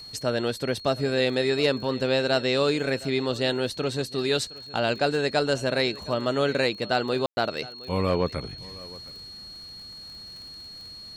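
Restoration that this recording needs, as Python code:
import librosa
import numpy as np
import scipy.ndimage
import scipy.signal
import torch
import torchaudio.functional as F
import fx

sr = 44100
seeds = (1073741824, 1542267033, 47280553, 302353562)

y = fx.fix_declick_ar(x, sr, threshold=6.5)
y = fx.notch(y, sr, hz=4300.0, q=30.0)
y = fx.fix_ambience(y, sr, seeds[0], print_start_s=10.26, print_end_s=10.76, start_s=7.26, end_s=7.37)
y = fx.fix_echo_inverse(y, sr, delay_ms=715, level_db=-20.0)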